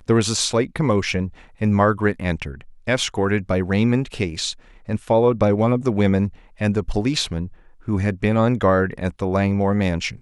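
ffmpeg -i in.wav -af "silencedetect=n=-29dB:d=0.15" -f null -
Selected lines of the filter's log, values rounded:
silence_start: 1.29
silence_end: 1.61 | silence_duration: 0.33
silence_start: 2.61
silence_end: 2.87 | silence_duration: 0.26
silence_start: 4.52
silence_end: 4.89 | silence_duration: 0.36
silence_start: 6.29
silence_end: 6.61 | silence_duration: 0.32
silence_start: 7.47
silence_end: 7.88 | silence_duration: 0.41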